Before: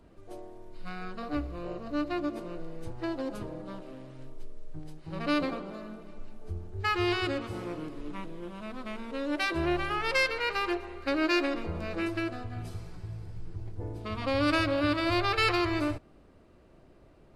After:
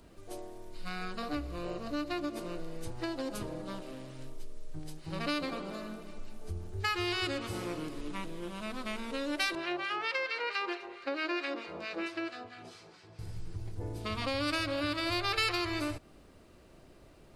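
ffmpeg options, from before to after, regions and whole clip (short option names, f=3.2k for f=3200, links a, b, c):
-filter_complex "[0:a]asettb=1/sr,asplit=3[a][b][c];[a]atrim=end=9.554[d];[b]atrim=start=9.55:end=13.19,asetpts=PTS-STARTPTS,afade=t=in:d=0.004:c=qsin,afade=t=out:st=3.636:d=0.004:c=qsin,acrossover=split=3000[e][f];[f]acompressor=threshold=-41dB:ratio=4:attack=1:release=60[g];[e][g]amix=inputs=2:normalize=0,highpass=320,lowpass=4.9k,acrossover=split=1200[h][i];[h]aeval=exprs='val(0)*(1-0.7/2+0.7/2*cos(2*PI*4.5*n/s))':c=same[j];[i]aeval=exprs='val(0)*(1-0.7/2-0.7/2*cos(2*PI*4.5*n/s))':c=same[k];[j][k]amix=inputs=2:normalize=0[l];[c]atrim=start=13.186[m];[d][l]acrossfade=d=0.004:c1=hsin:c2=qsin[n];[n][m]acrossfade=d=0.004:c1=qsin:c2=hsin,acompressor=threshold=-33dB:ratio=3,highshelf=f=3k:g=12"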